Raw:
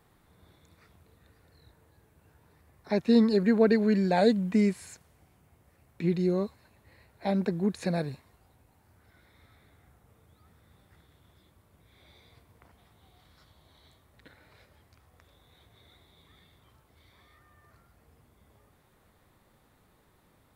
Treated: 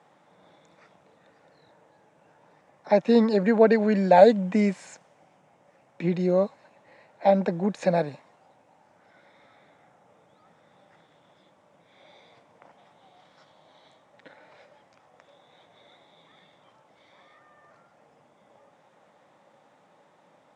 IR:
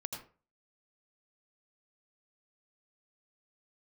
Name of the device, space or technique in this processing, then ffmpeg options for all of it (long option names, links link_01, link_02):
television speaker: -af "highpass=frequency=170:width=0.5412,highpass=frequency=170:width=1.3066,equalizer=frequency=230:width_type=q:width=4:gain=-4,equalizer=frequency=390:width_type=q:width=4:gain=-5,equalizer=frequency=570:width_type=q:width=4:gain=9,equalizer=frequency=830:width_type=q:width=4:gain=7,equalizer=frequency=4300:width_type=q:width=4:gain=-7,lowpass=frequency=7100:width=0.5412,lowpass=frequency=7100:width=1.3066,volume=4.5dB"